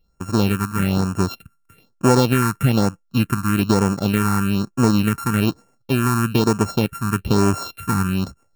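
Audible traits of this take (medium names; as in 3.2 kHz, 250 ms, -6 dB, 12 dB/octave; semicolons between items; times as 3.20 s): a buzz of ramps at a fixed pitch in blocks of 32 samples; phasing stages 4, 1.1 Hz, lowest notch 530–3700 Hz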